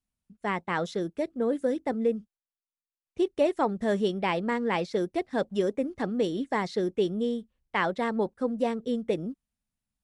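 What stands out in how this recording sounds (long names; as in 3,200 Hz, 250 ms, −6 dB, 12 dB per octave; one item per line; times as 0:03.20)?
background noise floor −96 dBFS
spectral slope −4.5 dB per octave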